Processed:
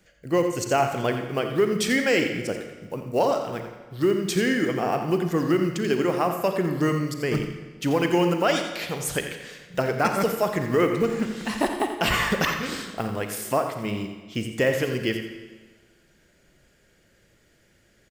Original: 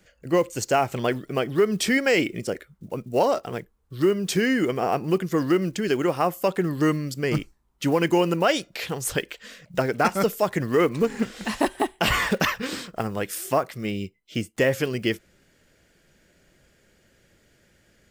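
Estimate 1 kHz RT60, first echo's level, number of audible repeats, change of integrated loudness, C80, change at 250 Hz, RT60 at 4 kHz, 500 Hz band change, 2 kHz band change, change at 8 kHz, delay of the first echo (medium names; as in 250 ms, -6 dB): 1.4 s, -10.0 dB, 1, -0.5 dB, 6.5 dB, -0.5 dB, 1.2 s, -0.5 dB, -0.5 dB, -0.5 dB, 86 ms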